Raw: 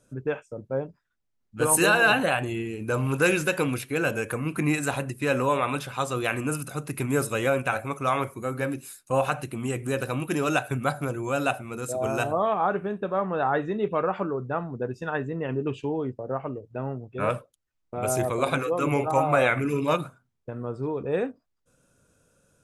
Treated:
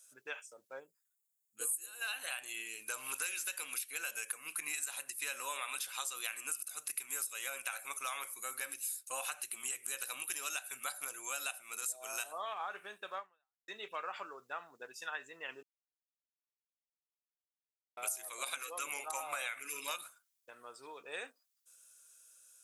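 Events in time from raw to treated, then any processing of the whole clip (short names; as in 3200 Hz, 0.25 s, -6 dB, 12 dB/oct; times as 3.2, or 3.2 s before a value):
0.79–2.01 spectral gain 540–6500 Hz -12 dB
13.18–13.68 fade out exponential
15.63–17.97 mute
whole clip: HPF 1000 Hz 6 dB/oct; differentiator; compressor 8:1, threshold -45 dBFS; gain +9 dB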